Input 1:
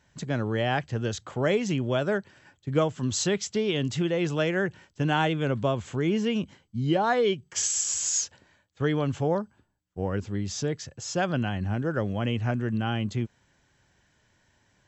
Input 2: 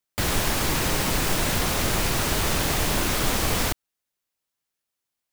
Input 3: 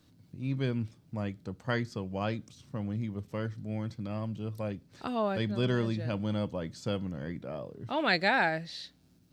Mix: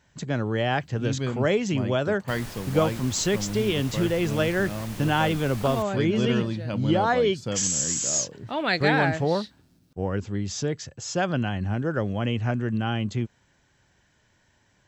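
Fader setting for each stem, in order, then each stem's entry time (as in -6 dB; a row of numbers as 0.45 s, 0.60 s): +1.5 dB, -16.5 dB, +2.5 dB; 0.00 s, 2.10 s, 0.60 s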